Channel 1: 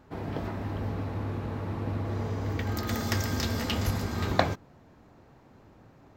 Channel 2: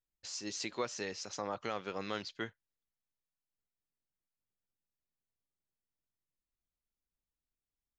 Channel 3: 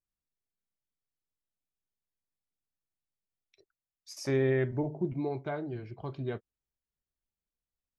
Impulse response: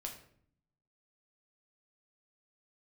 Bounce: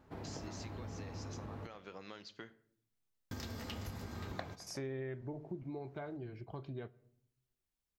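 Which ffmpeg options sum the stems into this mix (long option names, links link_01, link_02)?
-filter_complex "[0:a]volume=-7.5dB,asplit=3[link_01][link_02][link_03];[link_01]atrim=end=1.67,asetpts=PTS-STARTPTS,afade=type=out:start_time=1.666:duration=0.004:curve=hsin[link_04];[link_02]atrim=start=1.67:end=3.31,asetpts=PTS-STARTPTS,volume=0[link_05];[link_03]atrim=start=3.31,asetpts=PTS-STARTPTS,afade=type=in:duration=0.004:curve=hsin[link_06];[link_04][link_05][link_06]concat=n=3:v=0:a=1,asplit=2[link_07][link_08];[link_08]volume=-18.5dB[link_09];[1:a]acompressor=threshold=-45dB:ratio=5,volume=-3dB,asplit=2[link_10][link_11];[link_11]volume=-5dB[link_12];[2:a]adelay=500,volume=-2.5dB,asplit=2[link_13][link_14];[link_14]volume=-14.5dB[link_15];[3:a]atrim=start_sample=2205[link_16];[link_12][link_15]amix=inputs=2:normalize=0[link_17];[link_17][link_16]afir=irnorm=-1:irlink=0[link_18];[link_09]aecho=0:1:104|208|312|416|520|624|728|832:1|0.53|0.281|0.149|0.0789|0.0418|0.0222|0.0117[link_19];[link_07][link_10][link_13][link_18][link_19]amix=inputs=5:normalize=0,acompressor=threshold=-43dB:ratio=3"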